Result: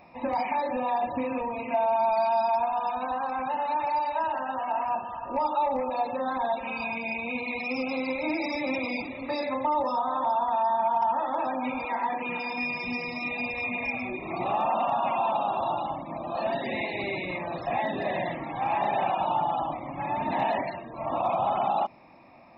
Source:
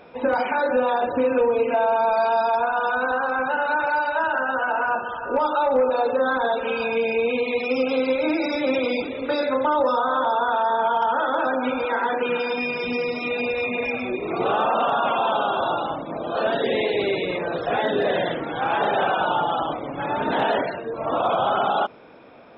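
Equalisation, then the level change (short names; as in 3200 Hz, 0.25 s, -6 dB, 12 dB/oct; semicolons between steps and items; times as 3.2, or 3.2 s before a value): bell 400 Hz +6 dB 0.55 oct; fixed phaser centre 2200 Hz, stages 8; dynamic EQ 1200 Hz, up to -4 dB, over -37 dBFS, Q 3.1; -2.0 dB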